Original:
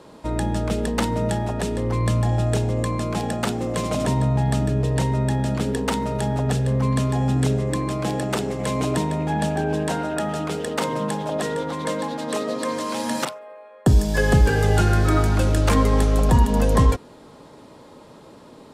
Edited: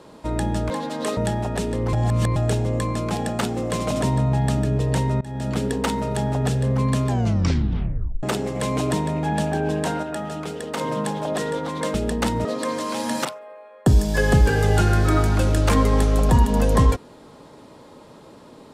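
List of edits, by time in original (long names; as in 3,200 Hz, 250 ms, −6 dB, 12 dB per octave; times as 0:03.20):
0:00.70–0:01.21: swap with 0:11.98–0:12.45
0:01.97–0:02.40: reverse
0:05.25–0:05.60: fade in, from −23.5 dB
0:07.12: tape stop 1.15 s
0:10.07–0:10.85: clip gain −4 dB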